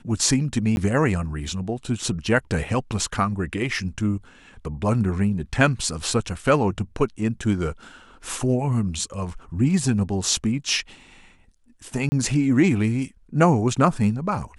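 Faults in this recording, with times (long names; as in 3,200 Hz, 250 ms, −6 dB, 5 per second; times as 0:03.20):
0:00.76–0:00.77: drop-out 11 ms
0:12.09–0:12.12: drop-out 30 ms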